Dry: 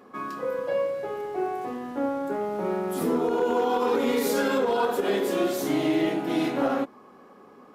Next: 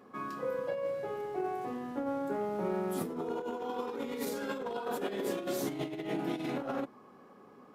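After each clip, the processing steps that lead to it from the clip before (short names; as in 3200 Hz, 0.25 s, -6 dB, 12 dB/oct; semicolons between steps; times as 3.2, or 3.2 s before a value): bell 130 Hz +5.5 dB 1.1 oct; negative-ratio compressor -26 dBFS, ratio -0.5; gain -8 dB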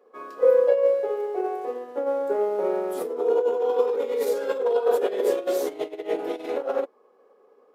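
resonant high-pass 470 Hz, resonance Q 4.9; upward expander 1.5:1, over -51 dBFS; gain +6.5 dB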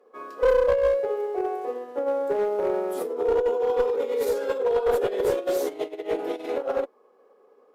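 one-sided clip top -19 dBFS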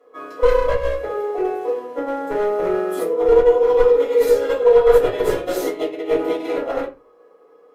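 reverb RT60 0.25 s, pre-delay 3 ms, DRR -5 dB; gain -1 dB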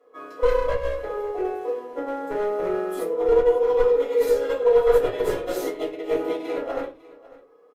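echo 0.549 s -20 dB; gain -5 dB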